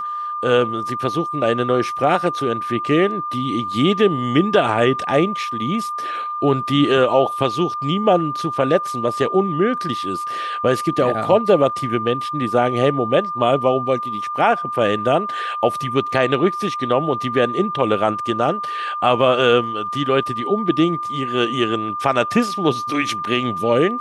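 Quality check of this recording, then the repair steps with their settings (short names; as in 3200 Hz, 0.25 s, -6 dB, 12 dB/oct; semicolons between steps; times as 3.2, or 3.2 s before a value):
tone 1200 Hz -23 dBFS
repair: notch 1200 Hz, Q 30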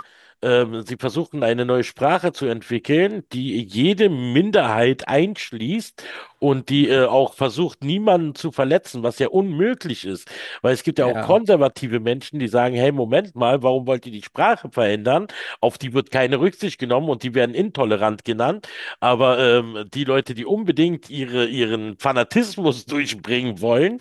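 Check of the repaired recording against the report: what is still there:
none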